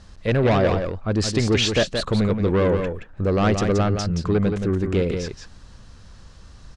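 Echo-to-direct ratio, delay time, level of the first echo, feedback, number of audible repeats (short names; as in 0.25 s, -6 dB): -6.5 dB, 0.174 s, -6.5 dB, no steady repeat, 1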